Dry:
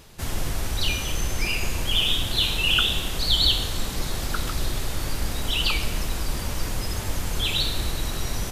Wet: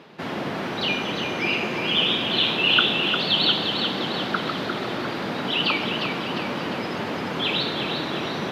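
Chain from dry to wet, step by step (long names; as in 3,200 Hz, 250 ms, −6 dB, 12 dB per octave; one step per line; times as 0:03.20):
high-pass filter 180 Hz 24 dB per octave
high-frequency loss of the air 340 metres
echo with a time of its own for lows and highs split 910 Hz, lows 208 ms, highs 352 ms, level −6 dB
level +8 dB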